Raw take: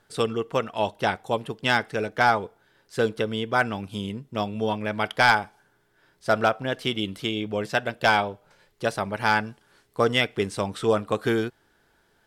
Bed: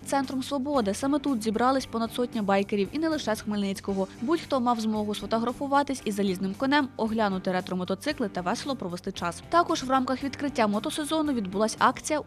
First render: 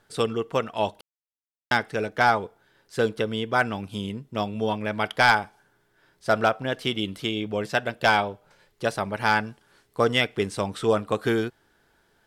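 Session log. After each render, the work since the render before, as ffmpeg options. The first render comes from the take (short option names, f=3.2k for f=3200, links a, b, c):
-filter_complex "[0:a]asplit=3[a][b][c];[a]atrim=end=1.01,asetpts=PTS-STARTPTS,afade=t=out:st=1.006:d=0.004:c=hsin[d];[b]atrim=start=1.01:end=1.71,asetpts=PTS-STARTPTS,volume=0[e];[c]atrim=start=1.71,asetpts=PTS-STARTPTS,afade=t=in:d=0.004:c=hsin[f];[d][e][f]concat=n=3:v=0:a=1"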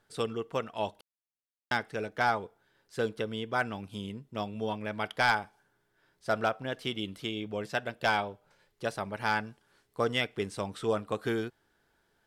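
-af "volume=-7.5dB"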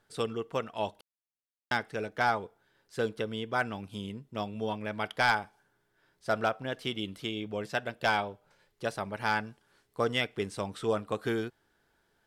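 -af anull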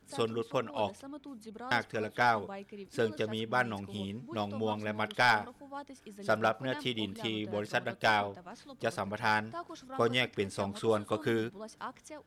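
-filter_complex "[1:a]volume=-20dB[a];[0:a][a]amix=inputs=2:normalize=0"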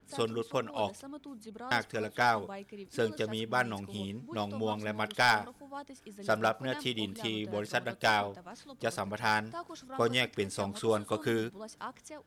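-af "adynamicequalizer=threshold=0.00398:dfrequency=4600:dqfactor=0.7:tfrequency=4600:tqfactor=0.7:attack=5:release=100:ratio=0.375:range=3:mode=boostabove:tftype=highshelf"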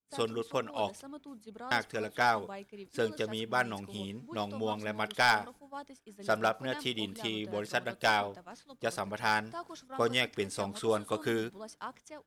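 -af "agate=range=-33dB:threshold=-45dB:ratio=3:detection=peak,equalizer=f=94:t=o:w=2.5:g=-3.5"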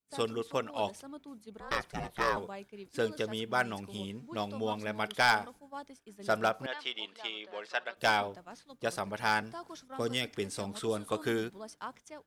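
-filter_complex "[0:a]asettb=1/sr,asplit=3[a][b][c];[a]atrim=end=1.604[d];[b]atrim=start=1.6:end=2.37,asetpts=PTS-STARTPTS,afade=t=in:d=0.004:c=qsin,afade=t=out:st=0.766:d=0.004:c=qsin,aeval=exprs='val(0)*sin(2*PI*280*n/s)':c=same[e];[c]atrim=start=2.366[f];[d][e]acrossfade=d=0.004:c1=hsin:c2=qsin[g];[g][f]acrossfade=d=0.004:c1=qsin:c2=hsin,asettb=1/sr,asplit=3[h][i][j];[h]atrim=end=6.664[k];[i]atrim=start=6.66:end=7.97,asetpts=PTS-STARTPTS,afade=t=in:d=0.004:c=qsin,afade=t=out:st=1.306:d=0.004:c=qsin,highpass=680,lowpass=4.2k[l];[j]atrim=start=7.966[m];[k][l]acrossfade=d=0.004:c1=hsin:c2=qsin[n];[n][m]acrossfade=d=0.004:c1=qsin:c2=hsin,asettb=1/sr,asplit=3[o][p][q];[o]atrim=end=9.424[r];[p]atrim=start=9.42:end=11.11,asetpts=PTS-STARTPTS,afade=t=in:d=0.004:c=qsin,afade=t=out:st=1.686:d=0.004:c=qsin,acrossover=split=440|3000[s][t][u];[t]acompressor=threshold=-39dB:ratio=3:attack=3.2:release=140:knee=2.83:detection=peak[v];[s][v][u]amix=inputs=3:normalize=0[w];[q]atrim=start=11.106[x];[r][w]acrossfade=d=0.004:c1=hsin:c2=qsin[y];[y][x]acrossfade=d=0.004:c1=qsin:c2=hsin"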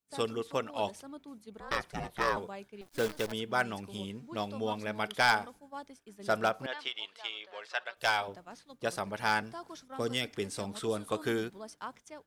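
-filter_complex "[0:a]asettb=1/sr,asplit=3[a][b][c];[a]atrim=end=2.814[d];[b]atrim=start=2.81:end=3.32,asetpts=PTS-STARTPTS,afade=t=in:d=0.004:c=qsin,afade=t=out:st=0.506:d=0.004:c=qsin,acrusher=bits=7:dc=4:mix=0:aa=0.000001[e];[c]atrim=start=3.316[f];[d][e]acrossfade=d=0.004:c1=hsin:c2=qsin[g];[g][f]acrossfade=d=0.004:c1=qsin:c2=hsin,asettb=1/sr,asplit=3[h][i][j];[h]atrim=end=6.884[k];[i]atrim=start=6.88:end=8.28,asetpts=PTS-STARTPTS,afade=t=in:d=0.004:c=qsin,afade=t=out:st=1.396:d=0.004:c=qsin,equalizer=f=230:w=0.82:g=-13.5[l];[j]atrim=start=8.276[m];[k][l]acrossfade=d=0.004:c1=hsin:c2=qsin[n];[n][m]acrossfade=d=0.004:c1=qsin:c2=hsin"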